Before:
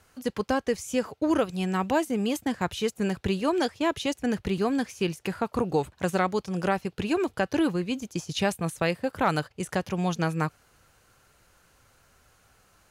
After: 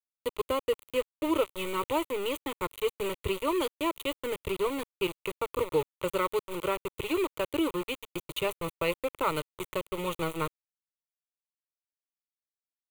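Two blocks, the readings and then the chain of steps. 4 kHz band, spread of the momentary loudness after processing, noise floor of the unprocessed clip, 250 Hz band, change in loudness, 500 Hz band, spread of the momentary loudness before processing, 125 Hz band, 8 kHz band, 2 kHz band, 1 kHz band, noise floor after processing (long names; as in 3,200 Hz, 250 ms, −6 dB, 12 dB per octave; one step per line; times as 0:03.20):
−1.5 dB, 6 LU, −64 dBFS, −7.5 dB, −4.0 dB, −1.5 dB, 5 LU, −11.0 dB, −5.0 dB, −4.5 dB, −3.5 dB, below −85 dBFS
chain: centre clipping without the shift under −28 dBFS
phaser with its sweep stopped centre 1,100 Hz, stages 8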